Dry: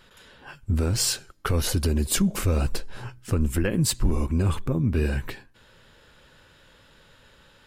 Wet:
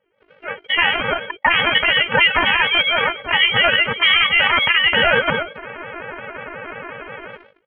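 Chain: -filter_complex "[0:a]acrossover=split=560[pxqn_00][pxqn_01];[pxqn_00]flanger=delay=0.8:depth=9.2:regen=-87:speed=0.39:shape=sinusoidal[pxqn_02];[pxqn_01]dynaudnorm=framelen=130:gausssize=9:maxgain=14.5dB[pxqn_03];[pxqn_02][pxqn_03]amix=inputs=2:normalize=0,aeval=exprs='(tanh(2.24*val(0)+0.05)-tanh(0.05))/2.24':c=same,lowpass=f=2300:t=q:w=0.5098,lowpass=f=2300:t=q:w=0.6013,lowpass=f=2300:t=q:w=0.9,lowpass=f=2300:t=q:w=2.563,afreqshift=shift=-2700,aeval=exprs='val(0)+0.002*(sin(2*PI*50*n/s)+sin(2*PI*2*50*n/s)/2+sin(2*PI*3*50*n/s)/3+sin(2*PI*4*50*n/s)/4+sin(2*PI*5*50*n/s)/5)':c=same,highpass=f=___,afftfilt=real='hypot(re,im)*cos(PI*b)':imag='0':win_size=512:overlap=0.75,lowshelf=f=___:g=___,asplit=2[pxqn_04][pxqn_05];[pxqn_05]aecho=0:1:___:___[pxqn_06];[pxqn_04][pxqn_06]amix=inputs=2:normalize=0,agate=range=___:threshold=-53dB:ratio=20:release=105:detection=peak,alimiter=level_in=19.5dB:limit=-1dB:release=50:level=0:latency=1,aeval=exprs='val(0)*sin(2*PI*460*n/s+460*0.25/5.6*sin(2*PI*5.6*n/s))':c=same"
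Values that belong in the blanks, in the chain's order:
94, 140, 9, 123, 0.112, -29dB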